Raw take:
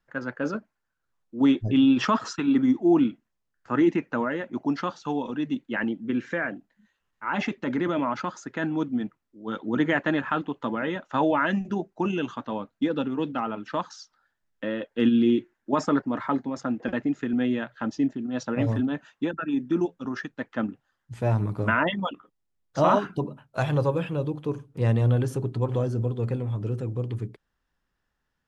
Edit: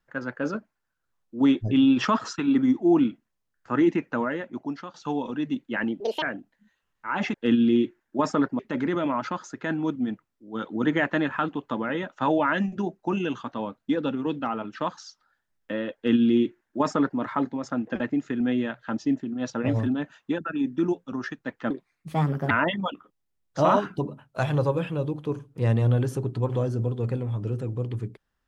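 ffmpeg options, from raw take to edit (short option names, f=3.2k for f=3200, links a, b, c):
-filter_complex "[0:a]asplit=8[a][b][c][d][e][f][g][h];[a]atrim=end=4.94,asetpts=PTS-STARTPTS,afade=t=out:st=4.29:d=0.65:silence=0.211349[i];[b]atrim=start=4.94:end=6.004,asetpts=PTS-STARTPTS,afade=t=in:d=0.004:c=hsin:silence=0.211349[j];[c]atrim=start=6:end=6.4,asetpts=PTS-STARTPTS,asetrate=79380,aresample=44100[k];[d]atrim=start=6.396:end=7.522[l];[e]atrim=start=14.878:end=16.132[m];[f]atrim=start=7.518:end=20.634[n];[g]atrim=start=20.63:end=21.7,asetpts=PTS-STARTPTS,asetrate=58653,aresample=44100[o];[h]atrim=start=21.696[p];[i][j]concat=n=2:v=0:a=1[q];[q][k]acrossfade=d=0.004:c1=hsin:c2=hsin[r];[r][l]acrossfade=d=0.004:c1=hsin:c2=hsin[s];[s][m]acrossfade=d=0.004:c1=hsin:c2=hsin[t];[t][n]acrossfade=d=0.004:c1=hsin:c2=hsin[u];[u][o]acrossfade=d=0.004:c1=hsin:c2=hsin[v];[v][p]acrossfade=d=0.004:c1=hsin:c2=hsin"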